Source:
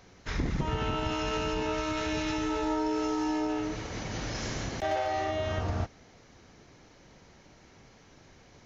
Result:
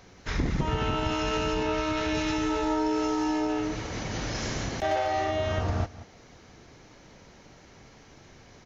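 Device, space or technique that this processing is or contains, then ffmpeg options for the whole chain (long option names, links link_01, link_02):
ducked delay: -filter_complex "[0:a]asettb=1/sr,asplit=3[link_01][link_02][link_03];[link_01]atrim=end=1.634[link_04];[link_02]atrim=start=1.63:end=2.15,asetpts=PTS-STARTPTS,afade=type=in:duration=0.004:curve=qsin,afade=type=out:start_time=0.516:duration=0.004:curve=qsin,lowpass=6000[link_05];[link_03]atrim=start=2.146[link_06];[link_04][link_05]acrossfade=duration=0.004:curve1=hsin:curve2=qsin[link_07];[link_07][link_06]acrossfade=duration=0.004:curve1=qsin:curve2=hsin,asplit=3[link_08][link_09][link_10];[link_09]adelay=183,volume=-6dB[link_11];[link_10]apad=whole_len=389819[link_12];[link_11][link_12]sidechaincompress=threshold=-51dB:ratio=3:attack=16:release=246[link_13];[link_08][link_13]amix=inputs=2:normalize=0,volume=3dB"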